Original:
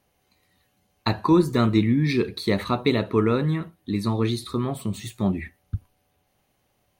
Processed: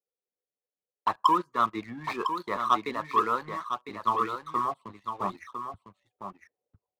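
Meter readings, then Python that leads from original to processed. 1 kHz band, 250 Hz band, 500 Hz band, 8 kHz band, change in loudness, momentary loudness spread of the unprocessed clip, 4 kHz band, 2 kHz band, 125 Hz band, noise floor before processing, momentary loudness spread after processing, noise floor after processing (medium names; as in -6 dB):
+6.0 dB, -16.0 dB, -10.5 dB, no reading, -5.5 dB, 12 LU, -8.5 dB, -5.5 dB, -23.0 dB, -70 dBFS, 15 LU, under -85 dBFS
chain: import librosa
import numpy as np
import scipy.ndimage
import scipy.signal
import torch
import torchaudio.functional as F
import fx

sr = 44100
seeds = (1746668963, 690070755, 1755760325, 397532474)

p1 = fx.auto_wah(x, sr, base_hz=470.0, top_hz=1100.0, q=6.5, full_db=-25.0, direction='up')
p2 = fx.dereverb_blind(p1, sr, rt60_s=0.62)
p3 = fx.rider(p2, sr, range_db=4, speed_s=0.5)
p4 = p2 + (p3 * 10.0 ** (1.0 / 20.0))
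p5 = fx.leveller(p4, sr, passes=2)
p6 = p5 + fx.echo_single(p5, sr, ms=1004, db=-6.0, dry=0)
p7 = fx.band_widen(p6, sr, depth_pct=40)
y = p7 * 10.0 ** (-2.0 / 20.0)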